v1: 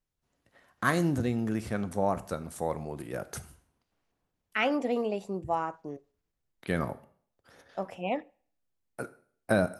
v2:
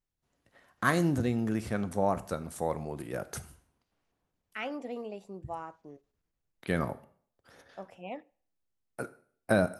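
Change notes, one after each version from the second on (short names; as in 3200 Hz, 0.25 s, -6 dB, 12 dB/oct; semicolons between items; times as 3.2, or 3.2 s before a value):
second voice -9.5 dB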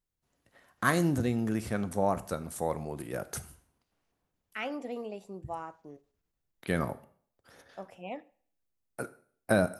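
second voice: send +6.0 dB; master: add high shelf 9700 Hz +7.5 dB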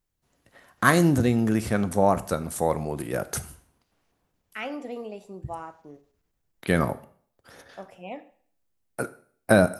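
first voice +7.5 dB; second voice: send +9.5 dB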